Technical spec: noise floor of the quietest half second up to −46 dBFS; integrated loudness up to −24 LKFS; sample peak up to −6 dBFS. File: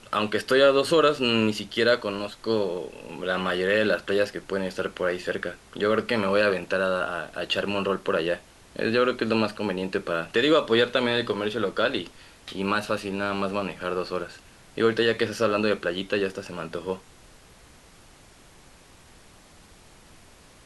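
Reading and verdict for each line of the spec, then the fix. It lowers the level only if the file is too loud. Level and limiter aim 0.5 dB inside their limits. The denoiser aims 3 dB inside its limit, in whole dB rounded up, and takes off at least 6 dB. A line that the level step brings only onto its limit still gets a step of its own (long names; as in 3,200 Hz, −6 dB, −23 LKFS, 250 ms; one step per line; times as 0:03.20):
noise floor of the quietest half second −52 dBFS: in spec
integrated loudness −25.0 LKFS: in spec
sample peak −8.0 dBFS: in spec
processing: no processing needed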